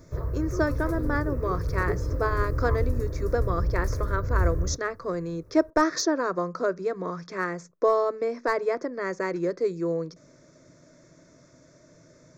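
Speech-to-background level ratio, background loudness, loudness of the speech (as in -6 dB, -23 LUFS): 1.5 dB, -30.0 LUFS, -28.5 LUFS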